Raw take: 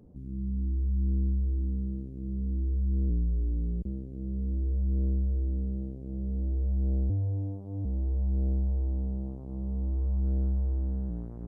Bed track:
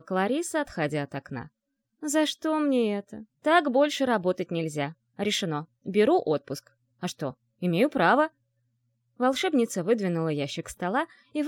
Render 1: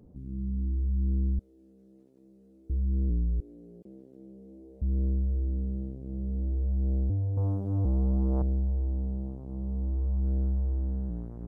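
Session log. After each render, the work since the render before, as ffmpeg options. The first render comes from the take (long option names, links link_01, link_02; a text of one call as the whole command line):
ffmpeg -i in.wav -filter_complex "[0:a]asettb=1/sr,asplit=3[link_01][link_02][link_03];[link_01]atrim=end=1.394[link_04];[link_02]atrim=start=1.39:end=2.7,asetpts=PTS-STARTPTS,afade=type=in:duration=0.004:curve=qsin,afade=type=out:start_time=1.306:duration=0.004:curve=qsin,highpass=690[link_05];[link_03]atrim=start=2.696[link_06];[link_04][link_05]acrossfade=duration=0.004:curve1=hsin:curve2=qsin[link_07];[link_07][link_06]acrossfade=duration=0.004:curve1=qsin:curve2=hsin,asettb=1/sr,asplit=3[link_08][link_09][link_10];[link_08]atrim=end=3.404[link_11];[link_09]atrim=start=3.4:end=4.82,asetpts=PTS-STARTPTS,afade=type=in:duration=0.004:curve=qsin,afade=type=out:start_time=1.416:duration=0.004:curve=qsin,highpass=410[link_12];[link_10]atrim=start=4.816[link_13];[link_11][link_12]acrossfade=duration=0.004:curve1=hsin:curve2=qsin[link_14];[link_14][link_13]acrossfade=duration=0.004:curve1=qsin:curve2=hsin,asettb=1/sr,asplit=3[link_15][link_16][link_17];[link_15]atrim=end=7.374[link_18];[link_16]atrim=start=7.37:end=8.42,asetpts=PTS-STARTPTS,afade=type=in:duration=0.004:curve=qsin,afade=type=out:start_time=1.046:duration=0.004:curve=qsin,aeval=exprs='0.075*sin(PI/2*2*val(0)/0.075)':channel_layout=same[link_19];[link_17]atrim=start=8.416[link_20];[link_18][link_19]acrossfade=duration=0.004:curve1=hsin:curve2=qsin[link_21];[link_21][link_20]acrossfade=duration=0.004:curve1=qsin:curve2=hsin" out.wav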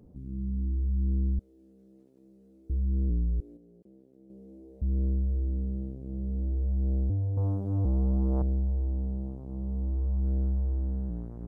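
ffmpeg -i in.wav -filter_complex "[0:a]asplit=3[link_01][link_02][link_03];[link_01]atrim=end=3.572[link_04];[link_02]atrim=start=3.568:end=4.302,asetpts=PTS-STARTPTS,volume=-7dB[link_05];[link_03]atrim=start=4.298[link_06];[link_04][link_05]acrossfade=duration=0.004:curve1=hsin:curve2=hsin[link_07];[link_07][link_06]acrossfade=duration=0.004:curve1=hsin:curve2=hsin" out.wav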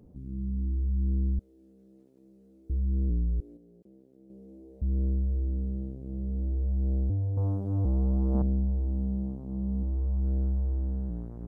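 ffmpeg -i in.wav -filter_complex "[0:a]asettb=1/sr,asplit=3[link_01][link_02][link_03];[link_01]atrim=end=8.344[link_04];[link_02]atrim=start=8.34:end=9.83,asetpts=PTS-STARTPTS,afade=type=in:duration=0.004:curve=qsin,afade=type=out:start_time=1.486:duration=0.004:curve=qsin,equalizer=frequency=220:width=5.5:gain=14.5[link_05];[link_03]atrim=start=9.826[link_06];[link_04][link_05]acrossfade=duration=0.004:curve1=hsin:curve2=qsin[link_07];[link_07][link_06]acrossfade=duration=0.004:curve1=qsin:curve2=hsin" out.wav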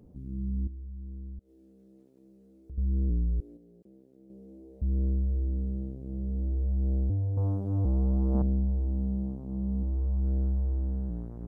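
ffmpeg -i in.wav -filter_complex "[0:a]asettb=1/sr,asplit=3[link_01][link_02][link_03];[link_01]atrim=end=0.674[link_04];[link_02]atrim=start=0.67:end=2.78,asetpts=PTS-STARTPTS,afade=type=in:duration=0.004:curve=qsin,afade=type=out:start_time=2.106:duration=0.004:curve=qsin,acompressor=threshold=-50dB:ratio=2:attack=3.2:release=140:knee=1:detection=peak[link_05];[link_03]atrim=start=2.776[link_06];[link_04][link_05]acrossfade=duration=0.004:curve1=hsin:curve2=qsin[link_07];[link_07][link_06]acrossfade=duration=0.004:curve1=qsin:curve2=hsin" out.wav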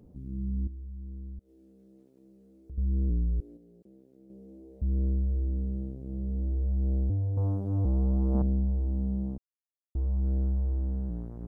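ffmpeg -i in.wav -filter_complex "[0:a]asplit=3[link_01][link_02][link_03];[link_01]atrim=end=9.38,asetpts=PTS-STARTPTS,afade=type=out:start_time=9.376:duration=0.004:curve=hsin[link_04];[link_02]atrim=start=9.38:end=9.95,asetpts=PTS-STARTPTS,volume=0[link_05];[link_03]atrim=start=9.95,asetpts=PTS-STARTPTS,afade=type=in:duration=0.004:curve=hsin[link_06];[link_04][link_05][link_06]concat=n=3:v=0:a=1" out.wav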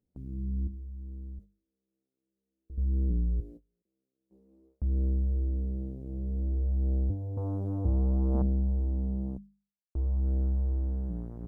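ffmpeg -i in.wav -af "agate=range=-28dB:threshold=-47dB:ratio=16:detection=peak,bandreject=frequency=50:width_type=h:width=6,bandreject=frequency=100:width_type=h:width=6,bandreject=frequency=150:width_type=h:width=6,bandreject=frequency=200:width_type=h:width=6" out.wav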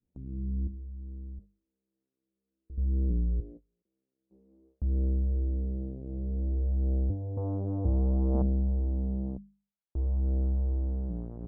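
ffmpeg -i in.wav -af "lowpass=frequency=1100:poles=1,adynamicequalizer=threshold=0.00316:dfrequency=590:dqfactor=1:tfrequency=590:tqfactor=1:attack=5:release=100:ratio=0.375:range=2:mode=boostabove:tftype=bell" out.wav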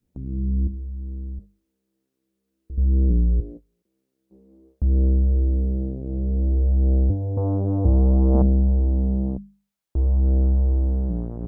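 ffmpeg -i in.wav -af "volume=9.5dB" out.wav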